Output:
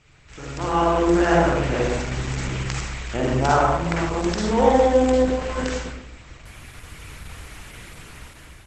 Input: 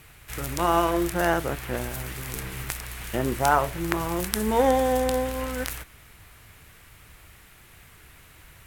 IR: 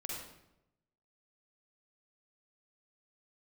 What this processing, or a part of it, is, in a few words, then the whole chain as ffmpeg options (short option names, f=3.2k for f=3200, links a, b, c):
speakerphone in a meeting room: -filter_complex "[1:a]atrim=start_sample=2205[a];[0:a][a]afir=irnorm=-1:irlink=0,dynaudnorm=f=410:g=5:m=13.5dB,volume=-1dB" -ar 48000 -c:a libopus -b:a 12k